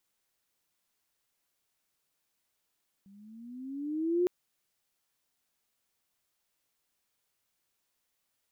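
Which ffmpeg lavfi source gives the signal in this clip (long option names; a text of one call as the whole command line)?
ffmpeg -f lavfi -i "aevalsrc='pow(10,(-22.5+30.5*(t/1.21-1))/20)*sin(2*PI*193*1.21/(11*log(2)/12)*(exp(11*log(2)/12*t/1.21)-1))':duration=1.21:sample_rate=44100" out.wav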